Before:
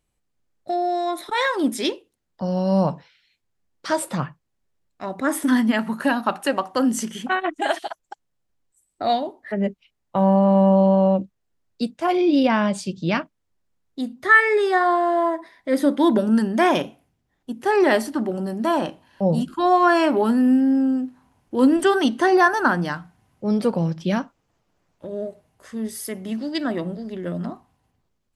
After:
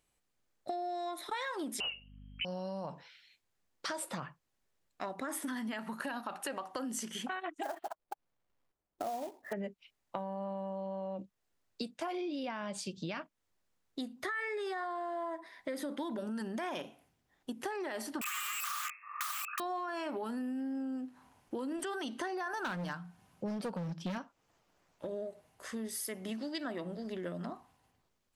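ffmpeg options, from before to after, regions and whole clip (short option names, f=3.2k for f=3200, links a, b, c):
-filter_complex "[0:a]asettb=1/sr,asplit=3[a][b][c];[a]atrim=end=1.804[d];[b]atrim=start=1.8:end=2.45,asetpts=PTS-STARTPTS,afade=t=in:d=0.004:c=qsin,afade=t=out:st=0.646:d=0.004:c=qsin,lowpass=f=2.7k:t=q:w=0.5098,lowpass=f=2.7k:t=q:w=0.6013,lowpass=f=2.7k:t=q:w=0.9,lowpass=f=2.7k:t=q:w=2.563,afreqshift=-3200,aeval=exprs='val(0)+0.00708*(sin(2*PI*50*n/s)+sin(2*PI*2*50*n/s)/2+sin(2*PI*3*50*n/s)/3+sin(2*PI*4*50*n/s)/4+sin(2*PI*5*50*n/s)/5)':c=same[e];[c]atrim=start=2.446[f];[d][e]acrossfade=d=0.004:c1=hsin:c2=qsin[g];[g][f]acrossfade=d=0.004:c1=qsin:c2=hsin,asettb=1/sr,asplit=3[h][i][j];[h]atrim=end=7.634[k];[i]atrim=start=7.63:end=9.53,asetpts=PTS-STARTPTS,afade=t=in:d=0.004:c=qsin,afade=t=out:st=1.896:d=0.004:c=qsin,lowpass=1.1k,aemphasis=mode=reproduction:type=50fm,acrusher=bits=4:mode=log:mix=0:aa=0.000001[l];[j]atrim=start=9.526[m];[k][l]acrossfade=d=0.004:c1=hsin:c2=qsin[n];[n][m]acrossfade=d=0.004:c1=qsin:c2=hsin,asettb=1/sr,asplit=3[o][p][q];[o]atrim=end=18.214[r];[p]atrim=start=18.21:end=19.6,asetpts=PTS-STARTPTS,afade=t=in:d=0.004:c=qsin,afade=t=out:st=1.386:d=0.004:c=qsin,lowpass=f=2.4k:t=q:w=0.5098,lowpass=f=2.4k:t=q:w=0.6013,lowpass=f=2.4k:t=q:w=0.9,lowpass=f=2.4k:t=q:w=2.563,afreqshift=-2800,aeval=exprs='(mod(18.8*val(0)+1,2)-1)/18.8':c=same,highpass=f=1.2k:t=q:w=15[s];[q]atrim=start=19.596[t];[r][s]acrossfade=d=0.004:c1=hsin:c2=qsin[u];[u][t]acrossfade=d=0.004:c1=qsin:c2=hsin,asettb=1/sr,asplit=3[v][w][x];[v]atrim=end=22.594[y];[w]atrim=start=22.59:end=24.18,asetpts=PTS-STARTPTS,afade=t=in:d=0.004:c=qsin,afade=t=out:st=1.586:d=0.004:c=qsin,equalizer=f=180:t=o:w=0.27:g=12,bandreject=f=2k:w=13,asoftclip=type=hard:threshold=-16.5dB[z];[x]atrim=start=24.176[aa];[y][z]acrossfade=d=0.004:c1=hsin:c2=qsin[ab];[ab][aa]acrossfade=d=0.004:c1=qsin:c2=hsin,alimiter=limit=-16dB:level=0:latency=1:release=39,lowshelf=f=330:g=-9.5,acompressor=threshold=-38dB:ratio=5,volume=1dB"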